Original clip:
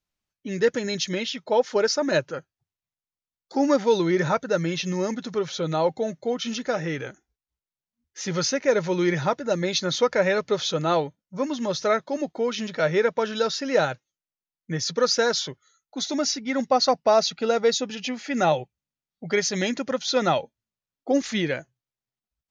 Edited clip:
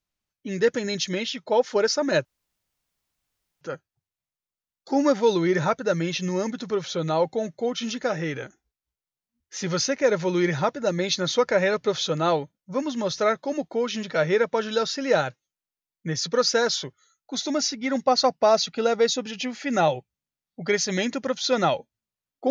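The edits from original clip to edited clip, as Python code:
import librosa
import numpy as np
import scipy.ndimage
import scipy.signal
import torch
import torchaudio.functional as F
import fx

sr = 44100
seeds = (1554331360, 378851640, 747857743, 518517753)

y = fx.edit(x, sr, fx.insert_room_tone(at_s=2.25, length_s=1.36), tone=tone)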